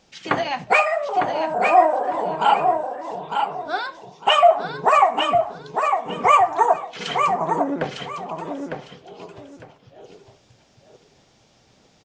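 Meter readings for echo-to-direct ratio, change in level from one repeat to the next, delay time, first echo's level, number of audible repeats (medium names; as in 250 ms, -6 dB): -5.5 dB, -13.0 dB, 904 ms, -5.5 dB, 2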